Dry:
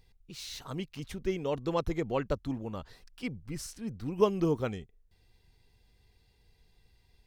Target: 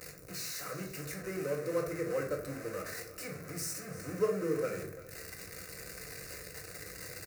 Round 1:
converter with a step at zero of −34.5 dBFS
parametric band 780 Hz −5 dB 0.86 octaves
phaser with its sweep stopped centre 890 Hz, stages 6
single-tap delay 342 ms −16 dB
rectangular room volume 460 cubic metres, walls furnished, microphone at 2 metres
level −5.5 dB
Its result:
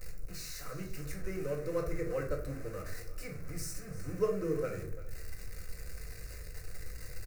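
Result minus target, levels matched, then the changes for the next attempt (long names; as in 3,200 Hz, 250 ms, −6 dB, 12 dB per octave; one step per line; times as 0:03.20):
125 Hz band +4.5 dB; converter with a step at zero: distortion −5 dB
change: converter with a step at zero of −28 dBFS
add after converter with a step at zero: high-pass filter 170 Hz 12 dB per octave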